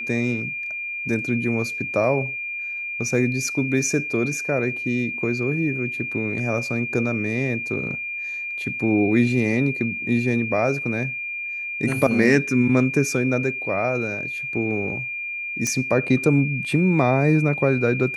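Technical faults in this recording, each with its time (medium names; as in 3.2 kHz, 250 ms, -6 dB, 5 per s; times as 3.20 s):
whine 2.4 kHz -27 dBFS
15.67 s: pop -11 dBFS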